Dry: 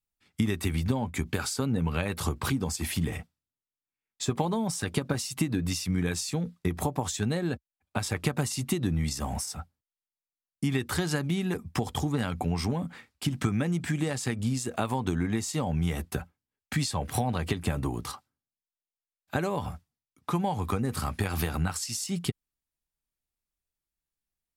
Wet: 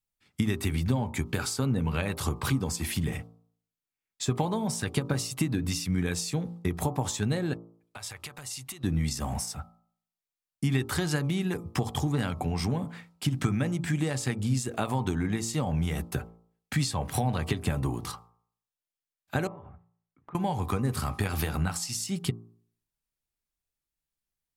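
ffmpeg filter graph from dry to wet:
-filter_complex "[0:a]asettb=1/sr,asplit=3[a][b][c];[a]atrim=end=7.534[d];[b]atrim=start=7.53:end=8.84,asetpts=PTS-STARTPTS,afade=t=in:d=0.004:c=qsin,afade=t=out:st=1.306:d=0.004:c=qsin,acompressor=threshold=-33dB:ratio=3:attack=3.2:release=140:knee=1:detection=peak,equalizer=f=220:t=o:w=2.9:g=-15[e];[c]atrim=start=8.836[f];[d][e]acrossfade=d=0.004:c1=hsin:c2=qsin[g];[g][f]acrossfade=d=0.004:c1=qsin:c2=hsin,asettb=1/sr,asplit=3[h][i][j];[h]atrim=end=19.474[k];[i]atrim=start=19.47:end=20.35,asetpts=PTS-STARTPTS,afade=t=in:d=0.004:c=qsin,afade=t=out:st=0.876:d=0.004:c=qsin,lowpass=f=2.1k:w=0.5412,lowpass=f=2.1k:w=1.3066,acompressor=threshold=-47dB:ratio=4:attack=3.2:release=140:knee=1:detection=peak[l];[j]atrim=start=20.346[m];[k][l]acrossfade=d=0.004:c1=hsin:c2=qsin[n];[n][m]acrossfade=d=0.004:c1=qsin:c2=hsin,equalizer=f=130:t=o:w=0.33:g=4.5,bandreject=f=56.98:t=h:w=4,bandreject=f=113.96:t=h:w=4,bandreject=f=170.94:t=h:w=4,bandreject=f=227.92:t=h:w=4,bandreject=f=284.9:t=h:w=4,bandreject=f=341.88:t=h:w=4,bandreject=f=398.86:t=h:w=4,bandreject=f=455.84:t=h:w=4,bandreject=f=512.82:t=h:w=4,bandreject=f=569.8:t=h:w=4,bandreject=f=626.78:t=h:w=4,bandreject=f=683.76:t=h:w=4,bandreject=f=740.74:t=h:w=4,bandreject=f=797.72:t=h:w=4,bandreject=f=854.7:t=h:w=4,bandreject=f=911.68:t=h:w=4,bandreject=f=968.66:t=h:w=4,bandreject=f=1.02564k:t=h:w=4,bandreject=f=1.08262k:t=h:w=4,bandreject=f=1.1396k:t=h:w=4,bandreject=f=1.19658k:t=h:w=4,bandreject=f=1.25356k:t=h:w=4,bandreject=f=1.31054k:t=h:w=4"

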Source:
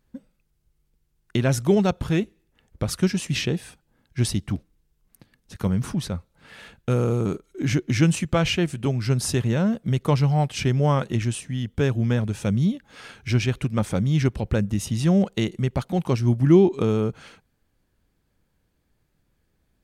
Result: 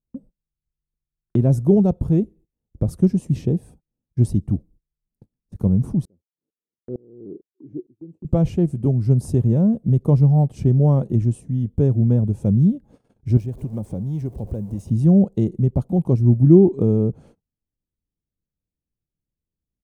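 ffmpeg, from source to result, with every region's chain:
-filter_complex "[0:a]asettb=1/sr,asplit=3[a][b][c];[a]atrim=end=6.054[d];[b]atrim=start=6.05:end=8.25,asetpts=PTS-STARTPTS,afade=t=in:d=0.004:c=qsin,afade=t=out:st=2.196:d=0.004:c=qsin,bandpass=f=350:t=q:w=3.4,aeval=exprs='val(0)*pow(10,-29*if(lt(mod(-2.2*n/s,1),2*abs(-2.2)/1000),1-mod(-2.2*n/s,1)/(2*abs(-2.2)/1000),(mod(-2.2*n/s,1)-2*abs(-2.2)/1000)/(1-2*abs(-2.2)/1000))/20)':c=same[e];[c]atrim=start=8.246[f];[d][e]acrossfade=d=0.004:c1=hsin:c2=qsin[g];[g][f]acrossfade=d=0.004:c1=qsin:c2=hsin,asettb=1/sr,asplit=3[h][i][j];[h]atrim=end=13.374[k];[i]atrim=start=13.37:end=14.9,asetpts=PTS-STARTPTS,afade=t=in:d=0.004:c=qsin,afade=t=out:st=1.526:d=0.004:c=qsin,aeval=exprs='val(0)+0.5*0.0251*sgn(val(0))':c=same,bandreject=f=1.3k:w=10,acrossover=split=450|7900[l][m][n];[l]acompressor=threshold=-32dB:ratio=4[o];[m]acompressor=threshold=-36dB:ratio=4[p];[n]acompressor=threshold=-49dB:ratio=4[q];[o][p][q]amix=inputs=3:normalize=0[r];[j]atrim=start=14.896[s];[k][r]acrossfade=d=0.004:c1=hsin:c2=qsin[t];[t][s]acrossfade=d=0.004:c1=qsin:c2=hsin,firequalizer=gain_entry='entry(150,0);entry(670,-8);entry(1500,-28);entry(3100,-29);entry(8800,-17)':delay=0.05:min_phase=1,agate=range=-23dB:threshold=-51dB:ratio=16:detection=peak,volume=6dB"

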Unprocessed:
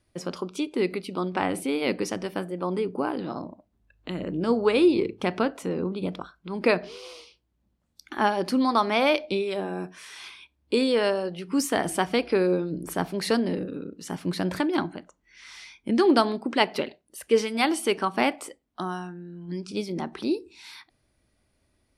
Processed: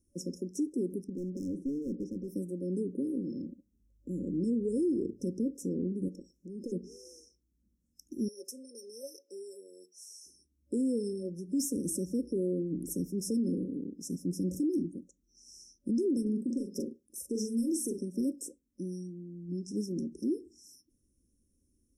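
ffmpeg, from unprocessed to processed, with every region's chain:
-filter_complex "[0:a]asettb=1/sr,asplit=3[a][b][c];[a]atrim=end=1.044[d];[b]atrim=start=1.04:end=2.28,asetpts=PTS-STARTPTS,afade=t=in:d=0.004:c=qsin,afade=t=out:st=1.236:d=0.004:c=qsin,lowpass=1.1k,aemphasis=mode=production:type=cd,asoftclip=type=hard:threshold=-28.5dB[e];[c]atrim=start=2.276[f];[d][e]acrossfade=d=0.004:c1=hsin:c2=qsin[g];[g][f]acrossfade=d=0.004:c1=qsin:c2=hsin,asettb=1/sr,asplit=3[h][i][j];[h]atrim=end=6.084[k];[i]atrim=start=6.08:end=6.72,asetpts=PTS-STARTPTS,afade=t=in:d=0.004:c=qsin,afade=t=out:st=0.636:d=0.004:c=qsin,acompressor=threshold=-43dB:ratio=2.5:attack=3.2:release=140:knee=1:detection=peak,asplit=2[l][m];[m]highpass=f=720:p=1,volume=18dB,asoftclip=type=tanh:threshold=-16.5dB[n];[l][n]amix=inputs=2:normalize=0,lowpass=f=4.3k:p=1,volume=-6dB[o];[j]atrim=start=6.716[p];[k][o]acrossfade=d=0.004:c1=hsin:c2=qsin[q];[q][p]acrossfade=d=0.004:c1=qsin:c2=hsin,asettb=1/sr,asplit=3[r][s][t];[r]atrim=end=8.284[u];[s]atrim=start=8.28:end=10.26,asetpts=PTS-STARTPTS,afade=t=in:d=0.004:c=qsin,afade=t=out:st=1.976:d=0.004:c=qsin,highpass=f=580:w=0.5412,highpass=f=580:w=1.3066,aecho=1:1:4.9:0.57,atrim=end_sample=87318[v];[t]atrim=start=10.256[w];[u][v]acrossfade=d=0.004:c1=hsin:c2=qsin[x];[x][w]acrossfade=d=0.004:c1=qsin:c2=hsin,asettb=1/sr,asplit=3[y][z][aa];[y]atrim=end=16.224[ab];[z]atrim=start=16.22:end=17.98,asetpts=PTS-STARTPTS,afade=t=in:d=0.004:c=qsin,afade=t=out:st=1.756:d=0.004:c=qsin,acompressor=threshold=-22dB:ratio=6:attack=3.2:release=140:knee=1:detection=peak,asplit=2[ac][ad];[ad]adelay=43,volume=-6dB[ae];[ac][ae]amix=inputs=2:normalize=0,atrim=end_sample=77616[af];[aa]atrim=start=17.976[ag];[ab][af]acrossfade=d=0.004:c1=hsin:c2=qsin[ah];[ah][ag]acrossfade=d=0.004:c1=qsin:c2=hsin,afftfilt=real='re*(1-between(b*sr/4096,560,5200))':imag='im*(1-between(b*sr/4096,560,5200))':win_size=4096:overlap=0.75,equalizer=f=125:t=o:w=1:g=-8,equalizer=f=250:t=o:w=1:g=5,equalizer=f=500:t=o:w=1:g=-11,alimiter=limit=-23dB:level=0:latency=1:release=32,volume=-1dB"

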